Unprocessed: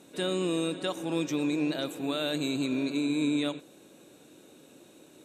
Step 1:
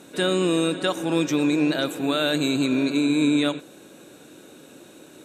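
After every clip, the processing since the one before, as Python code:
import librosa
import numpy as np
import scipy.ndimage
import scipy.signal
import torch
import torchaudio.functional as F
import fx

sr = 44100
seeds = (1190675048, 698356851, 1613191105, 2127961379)

y = fx.peak_eq(x, sr, hz=1500.0, db=5.0, octaves=0.47)
y = y * librosa.db_to_amplitude(7.5)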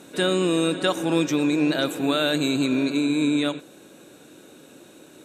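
y = fx.rider(x, sr, range_db=10, speed_s=0.5)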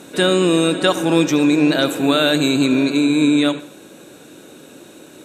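y = fx.echo_feedback(x, sr, ms=72, feedback_pct=48, wet_db=-17.5)
y = y * librosa.db_to_amplitude(6.5)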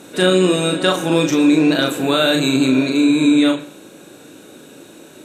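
y = fx.doubler(x, sr, ms=38.0, db=-4)
y = y * librosa.db_to_amplitude(-1.0)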